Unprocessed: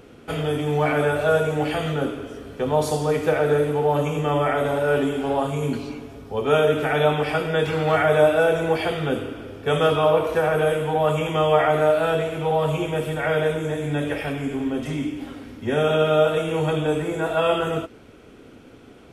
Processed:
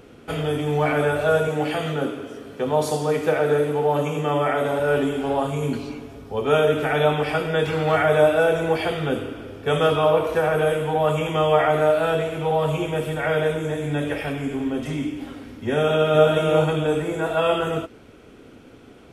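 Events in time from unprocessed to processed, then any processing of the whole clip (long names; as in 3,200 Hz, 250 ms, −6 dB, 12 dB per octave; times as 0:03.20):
0:01.48–0:04.80: high-pass filter 130 Hz
0:15.78–0:16.28: delay throw 360 ms, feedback 25%, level −3 dB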